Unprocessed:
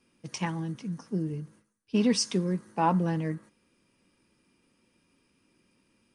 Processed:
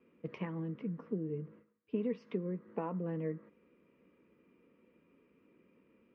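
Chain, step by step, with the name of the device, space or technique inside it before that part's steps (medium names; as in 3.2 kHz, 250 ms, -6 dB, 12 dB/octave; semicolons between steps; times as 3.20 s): bass amplifier (compression 5:1, threshold -37 dBFS, peak gain reduction 16 dB; cabinet simulation 69–2200 Hz, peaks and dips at 82 Hz -7 dB, 120 Hz -10 dB, 460 Hz +9 dB, 820 Hz -9 dB, 1.6 kHz -7 dB); trim +2 dB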